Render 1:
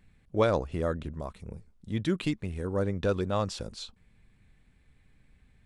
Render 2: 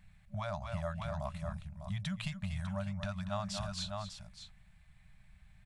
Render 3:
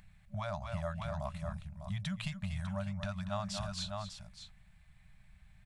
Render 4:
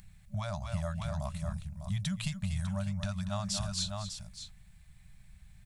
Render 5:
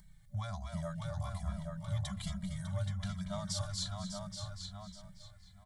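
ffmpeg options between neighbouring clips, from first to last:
ffmpeg -i in.wav -af "aecho=1:1:236|601:0.251|0.266,acompressor=threshold=-32dB:ratio=6,afftfilt=real='re*(1-between(b*sr/4096,210,580))':imag='im*(1-between(b*sr/4096,210,580))':win_size=4096:overlap=0.75,volume=1dB" out.wav
ffmpeg -i in.wav -af "acompressor=mode=upward:threshold=-59dB:ratio=2.5" out.wav
ffmpeg -i in.wav -af "bass=frequency=250:gain=6,treble=frequency=4000:gain=12,volume=-1dB" out.wav
ffmpeg -i in.wav -filter_complex "[0:a]asuperstop=centerf=2600:order=4:qfactor=4.6,asplit=2[link_01][link_02];[link_02]adelay=826,lowpass=frequency=3700:poles=1,volume=-4dB,asplit=2[link_03][link_04];[link_04]adelay=826,lowpass=frequency=3700:poles=1,volume=0.19,asplit=2[link_05][link_06];[link_06]adelay=826,lowpass=frequency=3700:poles=1,volume=0.19[link_07];[link_03][link_05][link_07]amix=inputs=3:normalize=0[link_08];[link_01][link_08]amix=inputs=2:normalize=0,asplit=2[link_09][link_10];[link_10]adelay=2.7,afreqshift=-1.2[link_11];[link_09][link_11]amix=inputs=2:normalize=1,volume=-1.5dB" out.wav

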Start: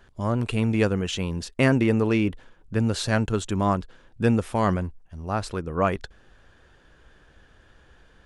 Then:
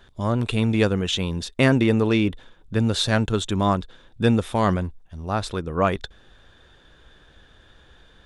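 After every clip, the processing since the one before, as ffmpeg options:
ffmpeg -i in.wav -af "equalizer=frequency=3600:width=7.8:gain=13,volume=2dB" out.wav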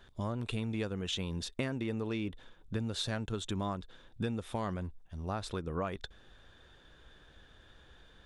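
ffmpeg -i in.wav -af "acompressor=threshold=-26dB:ratio=6,volume=-6dB" out.wav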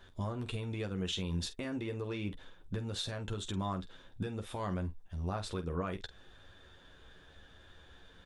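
ffmpeg -i in.wav -af "alimiter=level_in=4dB:limit=-24dB:level=0:latency=1:release=142,volume=-4dB,aecho=1:1:11|48:0.531|0.251" out.wav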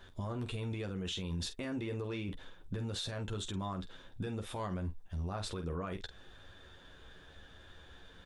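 ffmpeg -i in.wav -af "alimiter=level_in=8dB:limit=-24dB:level=0:latency=1:release=22,volume=-8dB,volume=2dB" out.wav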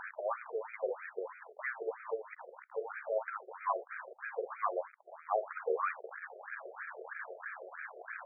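ffmpeg -i in.wav -af "aeval=exprs='val(0)+0.5*0.00631*sgn(val(0))':channel_layout=same,afftfilt=real='re*between(b*sr/1024,500*pow(1800/500,0.5+0.5*sin(2*PI*3.1*pts/sr))/1.41,500*pow(1800/500,0.5+0.5*sin(2*PI*3.1*pts/sr))*1.41)':imag='im*between(b*sr/1024,500*pow(1800/500,0.5+0.5*sin(2*PI*3.1*pts/sr))/1.41,500*pow(1800/500,0.5+0.5*sin(2*PI*3.1*pts/sr))*1.41)':win_size=1024:overlap=0.75,volume=11dB" out.wav

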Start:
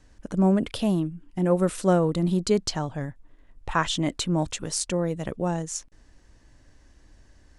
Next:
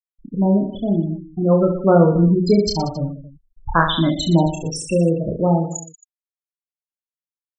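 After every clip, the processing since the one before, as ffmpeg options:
ffmpeg -i in.wav -af "afftfilt=real='re*gte(hypot(re,im),0.112)':imag='im*gte(hypot(re,im),0.112)':win_size=1024:overlap=0.75,aecho=1:1:30|69|119.7|185.6|271.3:0.631|0.398|0.251|0.158|0.1,dynaudnorm=framelen=230:gausssize=13:maxgain=6.5dB,volume=2dB" out.wav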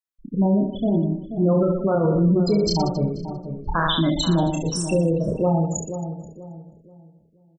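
ffmpeg -i in.wav -filter_complex "[0:a]alimiter=limit=-12dB:level=0:latency=1:release=31,asplit=2[link_01][link_02];[link_02]adelay=483,lowpass=frequency=830:poles=1,volume=-9dB,asplit=2[link_03][link_04];[link_04]adelay=483,lowpass=frequency=830:poles=1,volume=0.37,asplit=2[link_05][link_06];[link_06]adelay=483,lowpass=frequency=830:poles=1,volume=0.37,asplit=2[link_07][link_08];[link_08]adelay=483,lowpass=frequency=830:poles=1,volume=0.37[link_09];[link_03][link_05][link_07][link_09]amix=inputs=4:normalize=0[link_10];[link_01][link_10]amix=inputs=2:normalize=0" out.wav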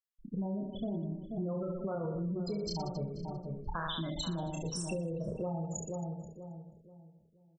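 ffmpeg -i in.wav -af "equalizer=frequency=290:width_type=o:width=0.31:gain=-8,acompressor=threshold=-26dB:ratio=6,volume=-7.5dB" out.wav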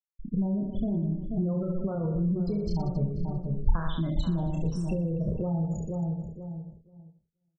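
ffmpeg -i in.wav -af "aemphasis=mode=reproduction:type=riaa,agate=range=-33dB:threshold=-42dB:ratio=3:detection=peak" out.wav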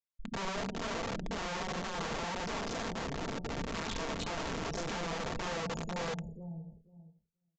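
ffmpeg -i in.wav -af "aeval=exprs='(mod(22.4*val(0)+1,2)-1)/22.4':channel_layout=same,aresample=16000,aresample=44100,aecho=1:1:4.4:0.3,volume=-5.5dB" out.wav

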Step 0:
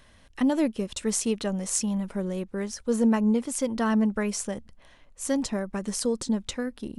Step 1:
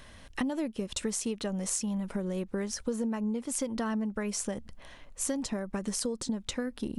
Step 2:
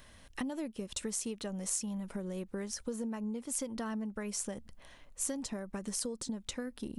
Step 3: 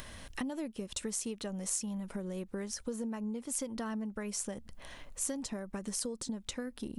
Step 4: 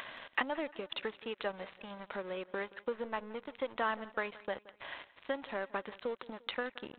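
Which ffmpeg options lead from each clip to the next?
ffmpeg -i in.wav -af "acompressor=threshold=-34dB:ratio=10,volume=5dB" out.wav
ffmpeg -i in.wav -af "highshelf=frequency=8600:gain=8,volume=-6dB" out.wav
ffmpeg -i in.wav -af "acompressor=mode=upward:threshold=-38dB:ratio=2.5" out.wav
ffmpeg -i in.wav -af "highpass=660,lowpass=3000,aresample=8000,aeval=exprs='sgn(val(0))*max(abs(val(0))-0.00112,0)':channel_layout=same,aresample=44100,aecho=1:1:174|348|522:0.1|0.046|0.0212,volume=12dB" out.wav

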